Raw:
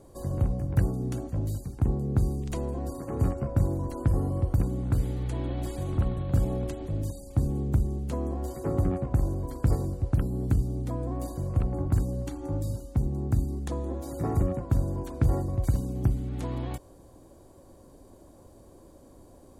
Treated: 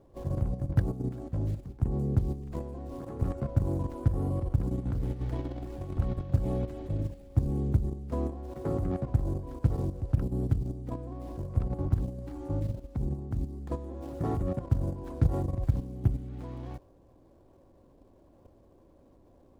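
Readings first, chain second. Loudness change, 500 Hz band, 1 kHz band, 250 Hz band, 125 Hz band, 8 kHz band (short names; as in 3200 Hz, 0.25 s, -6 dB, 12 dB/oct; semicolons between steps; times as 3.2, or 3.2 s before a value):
-3.0 dB, -3.0 dB, -3.5 dB, -3.0 dB, -2.5 dB, under -10 dB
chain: median filter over 15 samples; level quantiser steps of 10 dB; gain +1 dB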